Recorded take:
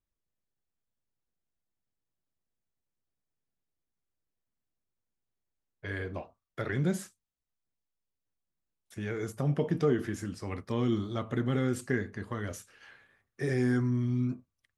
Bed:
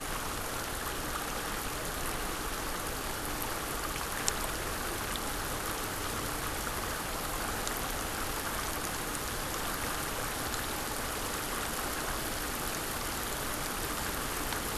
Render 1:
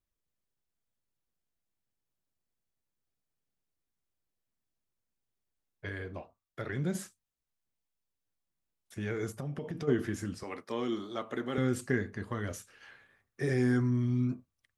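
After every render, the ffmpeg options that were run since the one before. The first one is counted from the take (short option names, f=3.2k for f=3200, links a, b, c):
-filter_complex "[0:a]asplit=3[a][b][c];[a]afade=t=out:st=9.35:d=0.02[d];[b]acompressor=threshold=-34dB:ratio=6:attack=3.2:release=140:knee=1:detection=peak,afade=t=in:st=9.35:d=0.02,afade=t=out:st=9.87:d=0.02[e];[c]afade=t=in:st=9.87:d=0.02[f];[d][e][f]amix=inputs=3:normalize=0,asettb=1/sr,asplit=3[g][h][i];[g]atrim=end=10.434[j];[h]atrim=start=10.43:end=11.58,asetpts=PTS-STARTPTS,afade=t=in:d=0.004:c=qsin,afade=t=out:st=1.146:d=0.004:c=qsin,highpass=330[k];[i]atrim=start=11.576[l];[j][k]acrossfade=d=0.004:c1=hsin:c2=qsin[m];[m][l]acrossfade=d=0.004:c1=qsin:c2=hsin,asplit=3[n][o][p];[n]atrim=end=5.892[q];[o]atrim=start=5.888:end=6.952,asetpts=PTS-STARTPTS,volume=-4dB[r];[p]atrim=start=6.948[s];[q][r]acrossfade=d=0.004:c1=hsin:c2=hsin[t];[t][s]acrossfade=d=0.004:c1=hsin:c2=hsin"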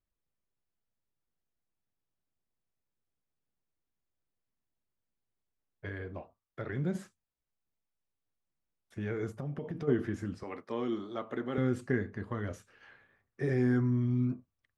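-af "lowpass=f=1.8k:p=1"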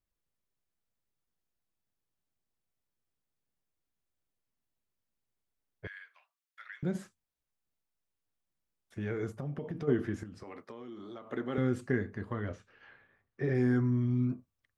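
-filter_complex "[0:a]asettb=1/sr,asplit=3[a][b][c];[a]atrim=end=5.874[d];[b]atrim=start=5.87:end=6.83,asetpts=PTS-STARTPTS,afade=t=in:d=0.004:c=qsin,afade=t=out:st=0.956:d=0.004:c=qsin,highpass=f=1.5k:w=0.5412,highpass=f=1.5k:w=1.3066[e];[c]atrim=start=6.826[f];[d][e]acrossfade=d=0.004:c1=hsin:c2=qsin[g];[g][f]acrossfade=d=0.004:c1=qsin:c2=hsin,asettb=1/sr,asplit=3[h][i][j];[h]atrim=end=10.234[k];[i]atrim=start=10.23:end=11.3,asetpts=PTS-STARTPTS,afade=t=in:d=0.004:c=qsin,afade=t=out:st=1.066:d=0.004:c=qsin,acompressor=threshold=-41dB:ratio=16:attack=3.2:release=140:knee=1:detection=peak[l];[j]atrim=start=11.296[m];[k][l]acrossfade=d=0.004:c1=hsin:c2=qsin[n];[n][m]acrossfade=d=0.004:c1=qsin:c2=hsin,asettb=1/sr,asplit=3[o][p][q];[o]atrim=end=12.334[r];[p]atrim=start=12.33:end=13.55,asetpts=PTS-STARTPTS,afade=t=in:d=0.004:c=qsin,afade=t=out:st=1.216:d=0.004:c=qsin,lowpass=4.1k[s];[q]atrim=start=13.546[t];[r][s]acrossfade=d=0.004:c1=hsin:c2=qsin[u];[u][t]acrossfade=d=0.004:c1=qsin:c2=hsin"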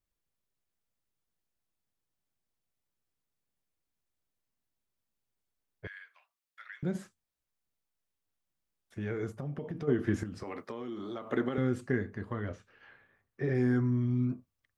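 -filter_complex "[0:a]asettb=1/sr,asplit=3[a][b][c];[a]atrim=end=10.074[d];[b]atrim=start=10.07:end=11.49,asetpts=PTS-STARTPTS,afade=t=in:d=0.004:c=qsin,afade=t=out:st=1.416:d=0.004:c=qsin,acontrast=53[e];[c]atrim=start=11.486[f];[d][e]acrossfade=d=0.004:c1=hsin:c2=qsin[g];[g][f]acrossfade=d=0.004:c1=qsin:c2=hsin"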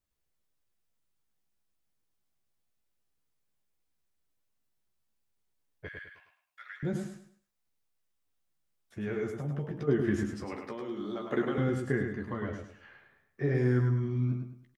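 -filter_complex "[0:a]asplit=2[a][b];[b]adelay=14,volume=-6dB[c];[a][c]amix=inputs=2:normalize=0,asplit=2[d][e];[e]aecho=0:1:104|208|312|416:0.531|0.165|0.051|0.0158[f];[d][f]amix=inputs=2:normalize=0"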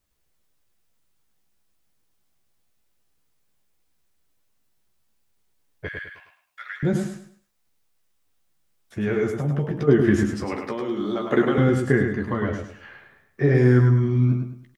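-af "volume=10.5dB"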